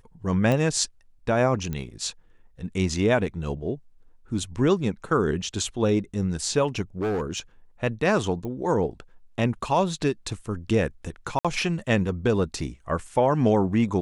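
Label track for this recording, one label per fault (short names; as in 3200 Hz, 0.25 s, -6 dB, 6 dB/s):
0.520000	0.520000	pop -13 dBFS
1.730000	1.730000	pop -18 dBFS
7.010000	7.390000	clipped -22.5 dBFS
8.450000	8.450000	pop -23 dBFS
11.390000	11.450000	gap 56 ms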